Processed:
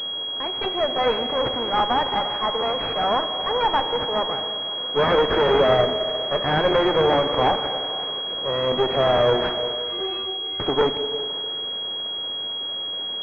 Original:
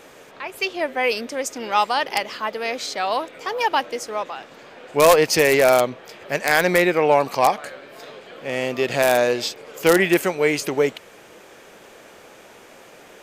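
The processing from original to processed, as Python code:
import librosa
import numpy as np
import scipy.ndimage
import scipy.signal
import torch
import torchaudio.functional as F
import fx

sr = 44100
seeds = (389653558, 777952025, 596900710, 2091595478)

y = fx.fold_sine(x, sr, drive_db=10, ceiling_db=-3.0)
y = fx.stiff_resonator(y, sr, f0_hz=380.0, decay_s=0.61, stiffness=0.008, at=(9.74, 10.6))
y = np.maximum(y, 0.0)
y = scipy.signal.sosfilt(scipy.signal.bessel(2, 210.0, 'highpass', norm='mag', fs=sr, output='sos'), y)
y = fx.echo_stepped(y, sr, ms=173, hz=340.0, octaves=0.7, feedback_pct=70, wet_db=-11.5)
y = fx.rev_schroeder(y, sr, rt60_s=2.4, comb_ms=29, drr_db=9.0)
y = fx.tube_stage(y, sr, drive_db=7.0, bias=0.75)
y = fx.buffer_crackle(y, sr, first_s=0.96, period_s=0.41, block=512, kind='repeat')
y = fx.pwm(y, sr, carrier_hz=3300.0)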